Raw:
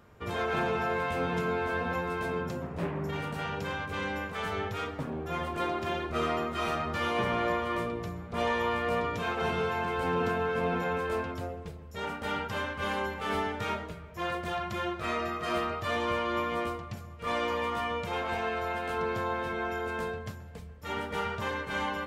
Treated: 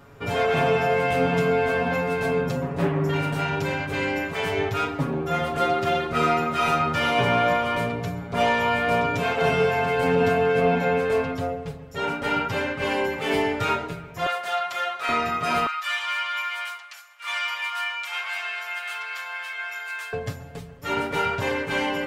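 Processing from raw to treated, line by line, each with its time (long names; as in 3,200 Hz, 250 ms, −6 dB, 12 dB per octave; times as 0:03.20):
0:10.60–0:13.04: high-shelf EQ 6,700 Hz −5 dB
0:14.26–0:15.09: high-pass filter 750 Hz
0:15.66–0:20.13: high-pass filter 1,200 Hz 24 dB per octave
whole clip: comb filter 7.2 ms, depth 99%; level +6 dB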